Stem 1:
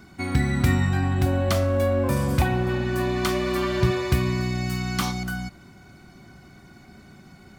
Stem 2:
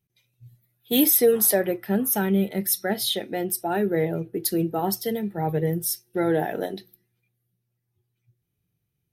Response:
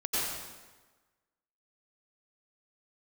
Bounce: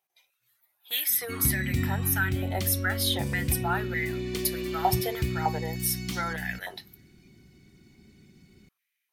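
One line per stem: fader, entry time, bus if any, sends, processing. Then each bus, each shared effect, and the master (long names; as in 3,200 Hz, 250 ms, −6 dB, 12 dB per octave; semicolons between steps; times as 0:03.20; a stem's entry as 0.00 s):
−7.0 dB, 1.10 s, no send, flat-topped bell 960 Hz −14.5 dB
+2.0 dB, 0.00 s, no send, downward compressor 2.5 to 1, threshold −28 dBFS, peak gain reduction 9.5 dB; high-pass on a step sequencer 3.3 Hz 770–2,000 Hz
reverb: not used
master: no processing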